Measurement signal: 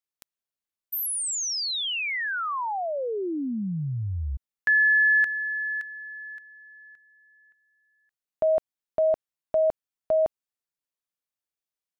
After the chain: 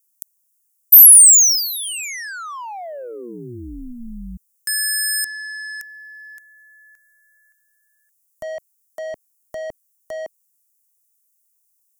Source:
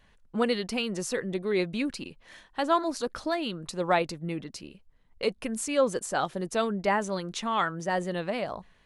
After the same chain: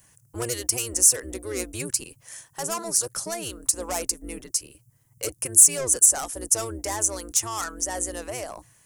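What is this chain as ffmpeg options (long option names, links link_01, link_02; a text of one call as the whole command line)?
ffmpeg -i in.wav -filter_complex "[0:a]acrossover=split=340[link_01][link_02];[link_01]aeval=exprs='val(0)*sin(2*PI*120*n/s)':channel_layout=same[link_03];[link_02]asoftclip=type=tanh:threshold=-26.5dB[link_04];[link_03][link_04]amix=inputs=2:normalize=0,aexciter=amount=11.7:drive=7.5:freq=5800" out.wav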